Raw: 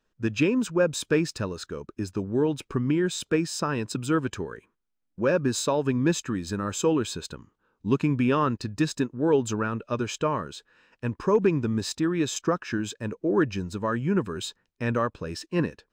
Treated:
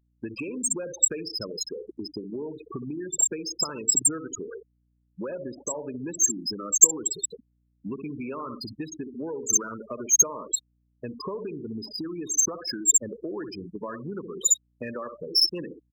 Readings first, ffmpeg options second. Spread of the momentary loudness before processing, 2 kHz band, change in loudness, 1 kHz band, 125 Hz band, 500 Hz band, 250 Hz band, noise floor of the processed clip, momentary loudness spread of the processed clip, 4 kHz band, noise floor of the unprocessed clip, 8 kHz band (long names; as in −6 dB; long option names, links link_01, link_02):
11 LU, −11.5 dB, +2.0 dB, −9.5 dB, −14.5 dB, −9.0 dB, −9.5 dB, −70 dBFS, 17 LU, +5.0 dB, −77 dBFS, +15.5 dB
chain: -filter_complex "[0:a]aeval=exprs='val(0)+0.5*0.0119*sgn(val(0))':channel_layout=same,bandreject=frequency=4400:width=19,aecho=1:1:63|126|189|252|315:0.355|0.167|0.0784|0.0368|0.0173,acrossover=split=420|3800[link_01][link_02][link_03];[link_03]aeval=exprs='0.126*sin(PI/2*6.31*val(0)/0.126)':channel_layout=same[link_04];[link_01][link_02][link_04]amix=inputs=3:normalize=0,asplit=2[link_05][link_06];[link_06]highpass=frequency=720:poles=1,volume=15dB,asoftclip=type=tanh:threshold=-8.5dB[link_07];[link_05][link_07]amix=inputs=2:normalize=0,lowpass=frequency=7400:poles=1,volume=-6dB,asplit=2[link_08][link_09];[link_09]adynamicsmooth=sensitivity=1:basefreq=610,volume=-1dB[link_10];[link_08][link_10]amix=inputs=2:normalize=0,equalizer=frequency=370:width=0.3:gain=8.5,afftfilt=real='re*gte(hypot(re,im),0.501)':imag='im*gte(hypot(re,im),0.501)':win_size=1024:overlap=0.75,acompressor=threshold=-18dB:ratio=6,aeval=exprs='val(0)+0.002*(sin(2*PI*60*n/s)+sin(2*PI*2*60*n/s)/2+sin(2*PI*3*60*n/s)/3+sin(2*PI*4*60*n/s)/4+sin(2*PI*5*60*n/s)/5)':channel_layout=same,aexciter=amount=14.1:drive=9.8:freq=5900,adynamicequalizer=threshold=0.0708:dfrequency=3000:dqfactor=0.7:tfrequency=3000:tqfactor=0.7:attack=5:release=100:ratio=0.375:range=3:mode=boostabove:tftype=highshelf,volume=-14.5dB"